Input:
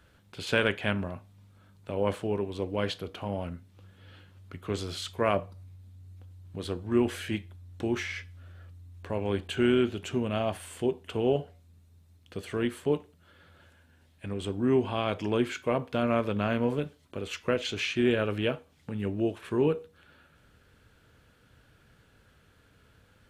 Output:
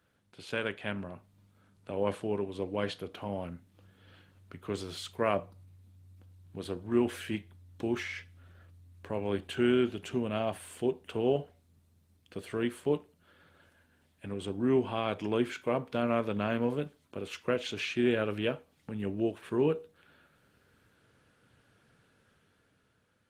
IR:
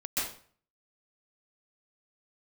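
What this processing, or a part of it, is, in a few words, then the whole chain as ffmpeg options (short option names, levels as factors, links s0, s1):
video call: -af "highpass=110,dynaudnorm=f=180:g=11:m=2.11,volume=0.376" -ar 48000 -c:a libopus -b:a 24k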